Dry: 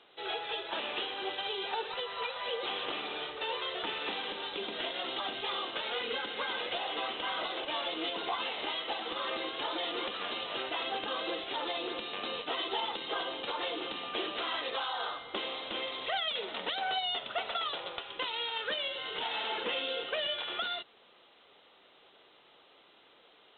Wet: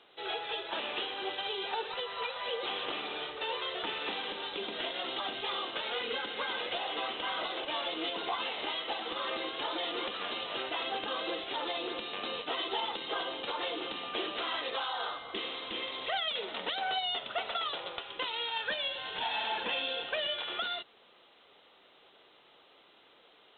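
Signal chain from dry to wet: 15.24–15.91 s: spectral replace 530–1600 Hz; 18.51–20.16 s: comb 1.2 ms, depth 48%

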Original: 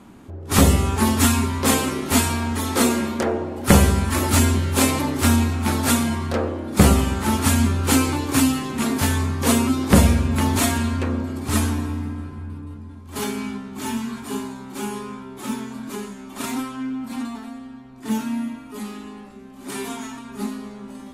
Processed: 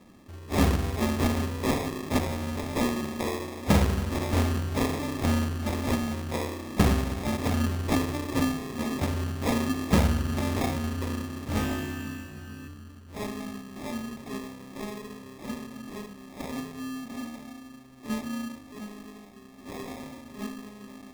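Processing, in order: sample-and-hold 30×; 11.54–12.68 s: flutter echo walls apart 3.3 m, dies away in 0.45 s; trim -8 dB

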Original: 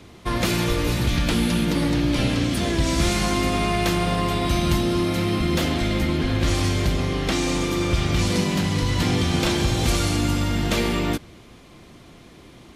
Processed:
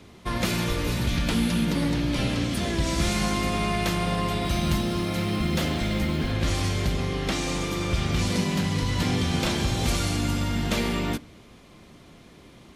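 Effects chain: on a send at -14 dB: reverberation RT60 0.25 s, pre-delay 3 ms; 4.44–6.32 s: on the sum: modulation noise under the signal 31 dB; trim -3.5 dB

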